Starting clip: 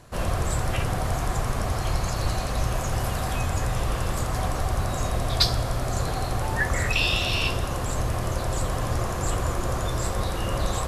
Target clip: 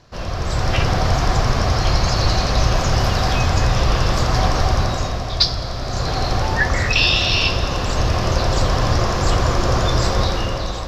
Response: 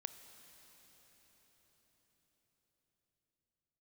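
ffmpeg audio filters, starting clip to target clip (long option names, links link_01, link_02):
-filter_complex "[0:a]highshelf=frequency=7000:width_type=q:width=3:gain=-11,dynaudnorm=framelen=100:gausssize=11:maxgain=11dB,asplit=2[link_01][link_02];[1:a]atrim=start_sample=2205,asetrate=42777,aresample=44100[link_03];[link_02][link_03]afir=irnorm=-1:irlink=0,volume=7.5dB[link_04];[link_01][link_04]amix=inputs=2:normalize=0,volume=-9dB"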